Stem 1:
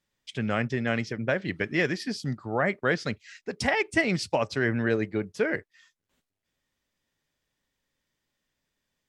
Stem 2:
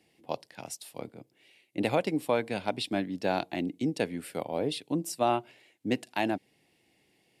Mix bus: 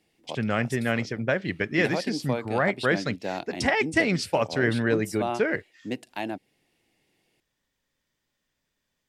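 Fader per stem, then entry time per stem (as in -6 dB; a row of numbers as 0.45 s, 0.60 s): +1.5 dB, -3.0 dB; 0.00 s, 0.00 s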